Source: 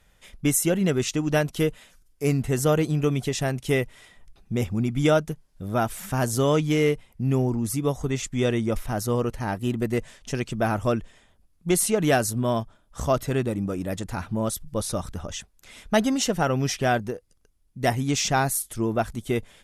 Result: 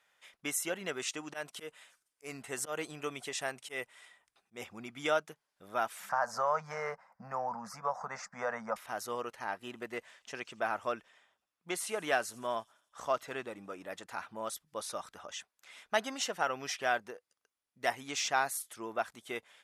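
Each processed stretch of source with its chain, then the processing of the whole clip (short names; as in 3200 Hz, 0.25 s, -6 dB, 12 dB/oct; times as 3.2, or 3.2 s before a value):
0.98–4.62 bell 8600 Hz +7 dB 0.42 oct + auto swell 0.137 s
6.09–8.76 EQ curve 130 Hz 0 dB, 200 Hz +13 dB, 320 Hz -24 dB, 520 Hz +8 dB, 870 Hz +13 dB, 1600 Hz +9 dB, 3300 Hz -22 dB, 4900 Hz +2 dB, 9800 Hz -14 dB + compressor 2.5:1, threshold -20 dBFS
9.44–14.03 high shelf 5300 Hz -5.5 dB + thin delay 84 ms, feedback 63%, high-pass 5100 Hz, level -17 dB
whole clip: HPF 1100 Hz 12 dB/oct; tilt -3 dB/oct; gain -1.5 dB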